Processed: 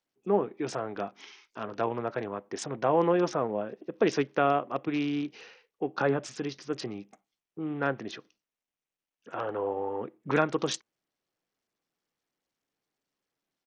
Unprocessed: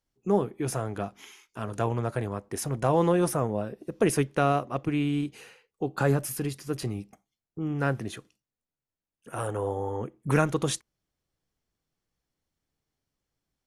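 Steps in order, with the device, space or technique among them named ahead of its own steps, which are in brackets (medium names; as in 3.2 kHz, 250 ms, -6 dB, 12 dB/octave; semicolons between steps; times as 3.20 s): Bluetooth headset (high-pass 250 Hz 12 dB/octave; resampled via 16 kHz; SBC 64 kbps 48 kHz)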